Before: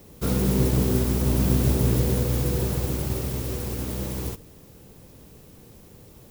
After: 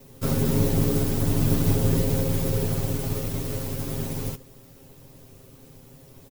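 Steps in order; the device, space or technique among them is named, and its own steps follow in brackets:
ring-modulated robot voice (ring modulation 40 Hz; comb filter 7.5 ms, depth 91%)

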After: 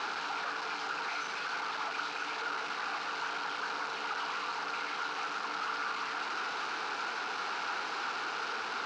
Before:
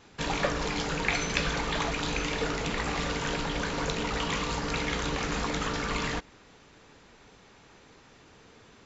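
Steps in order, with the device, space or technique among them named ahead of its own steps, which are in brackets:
home computer beeper (sign of each sample alone; loudspeaker in its box 580–4,700 Hz, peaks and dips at 580 Hz −9 dB, 820 Hz +4 dB, 1,400 Hz +10 dB, 1,900 Hz −7 dB, 3,400 Hz −6 dB)
level −2.5 dB

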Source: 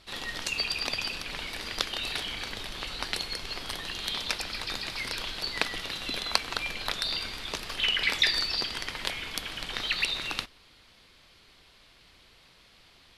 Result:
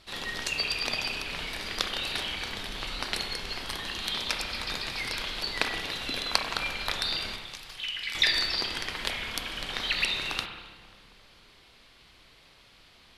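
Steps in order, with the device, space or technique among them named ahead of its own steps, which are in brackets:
0:07.36–0:08.15: guitar amp tone stack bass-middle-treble 5-5-5
dub delay into a spring reverb (feedback echo with a low-pass in the loop 269 ms, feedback 73%, low-pass 1,800 Hz, level −19 dB; spring reverb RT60 1.2 s, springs 30/55 ms, chirp 20 ms, DRR 4 dB)

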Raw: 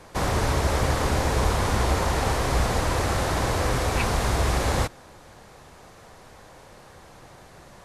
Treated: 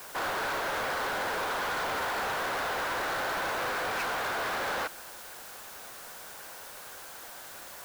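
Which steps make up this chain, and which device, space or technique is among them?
drive-through speaker (band-pass filter 530–2,900 Hz; parametric band 1,500 Hz +8.5 dB 0.29 octaves; hard clipping −29.5 dBFS, distortion −8 dB; white noise bed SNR 13 dB)

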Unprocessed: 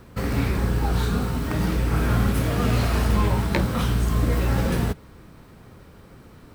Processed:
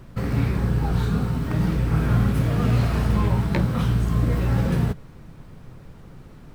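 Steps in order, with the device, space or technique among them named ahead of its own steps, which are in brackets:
car interior (parametric band 140 Hz +9 dB 0.83 octaves; high-shelf EQ 4,300 Hz −6 dB; brown noise bed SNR 23 dB)
level −2.5 dB

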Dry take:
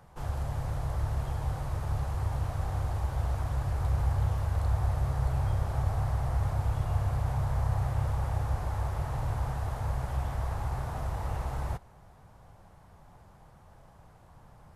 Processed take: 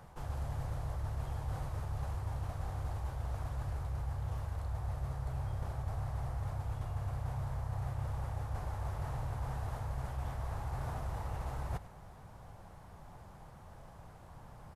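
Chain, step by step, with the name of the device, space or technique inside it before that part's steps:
compression on the reversed sound (reversed playback; downward compressor 6 to 1, threshold −37 dBFS, peak gain reduction 14 dB; reversed playback)
single-tap delay 99 ms −16 dB
level +2 dB

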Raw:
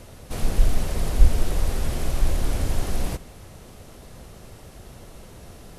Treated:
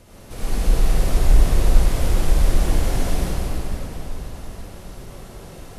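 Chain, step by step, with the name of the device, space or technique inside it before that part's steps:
cathedral (convolution reverb RT60 4.5 s, pre-delay 54 ms, DRR −10 dB)
level −5.5 dB

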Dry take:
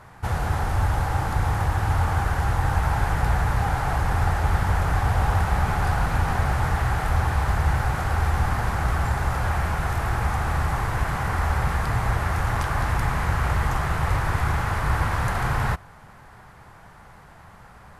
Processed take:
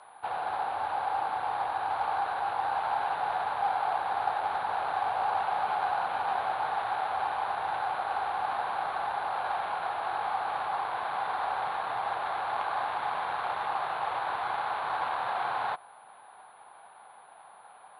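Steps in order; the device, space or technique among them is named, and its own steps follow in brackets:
toy sound module (linearly interpolated sample-rate reduction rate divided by 8×; switching amplifier with a slow clock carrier 10,000 Hz; loudspeaker in its box 770–4,400 Hz, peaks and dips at 770 Hz +6 dB, 1,300 Hz −4 dB, 1,900 Hz −9 dB)

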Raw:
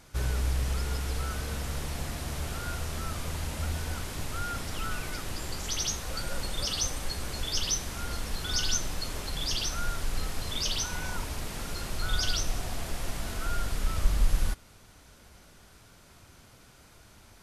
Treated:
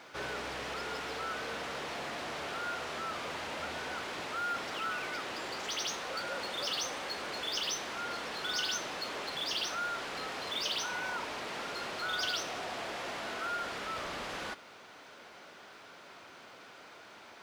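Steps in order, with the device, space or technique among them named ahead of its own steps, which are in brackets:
phone line with mismatched companding (band-pass filter 400–3,500 Hz; mu-law and A-law mismatch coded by mu)

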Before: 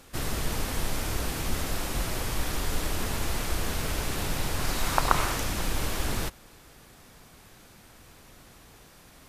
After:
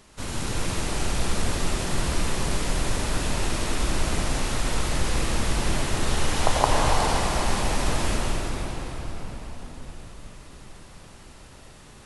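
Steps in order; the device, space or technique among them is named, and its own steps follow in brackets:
slowed and reverbed (speed change −23%; convolution reverb RT60 5.3 s, pre-delay 80 ms, DRR −4 dB)
level −1 dB

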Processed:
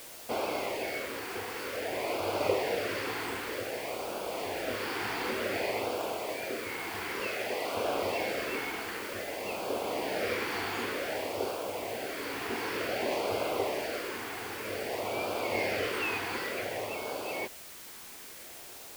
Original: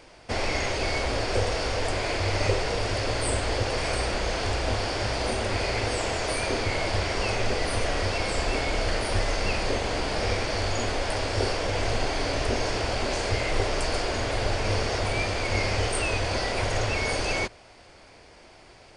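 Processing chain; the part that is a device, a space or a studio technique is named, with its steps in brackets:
shortwave radio (band-pass filter 280–2,800 Hz; amplitude tremolo 0.38 Hz, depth 48%; auto-filter notch sine 0.54 Hz 570–1,900 Hz; white noise bed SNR 13 dB)
0:07.27–0:07.77: low-shelf EQ 420 Hz −7.5 dB

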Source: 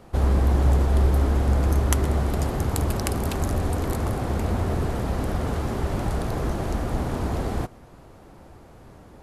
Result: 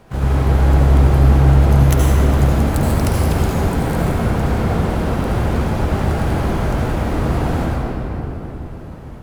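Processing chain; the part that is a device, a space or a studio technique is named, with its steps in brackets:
shimmer-style reverb (pitch-shifted copies added +12 semitones −4 dB; convolution reverb RT60 3.7 s, pre-delay 67 ms, DRR −4.5 dB)
level −1 dB

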